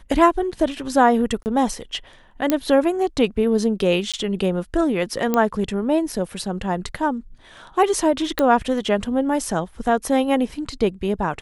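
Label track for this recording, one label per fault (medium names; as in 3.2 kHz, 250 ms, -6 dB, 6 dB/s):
1.430000	1.460000	dropout 29 ms
2.500000	2.500000	pop -4 dBFS
4.120000	4.140000	dropout 16 ms
5.340000	5.340000	pop -7 dBFS
8.390000	8.390000	pop -6 dBFS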